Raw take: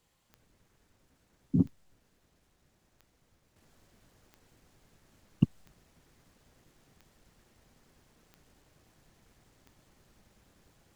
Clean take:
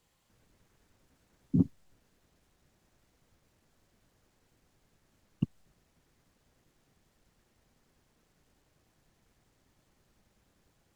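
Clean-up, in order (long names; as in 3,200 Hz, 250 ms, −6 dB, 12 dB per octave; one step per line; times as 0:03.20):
click removal
level 0 dB, from 0:03.56 −6 dB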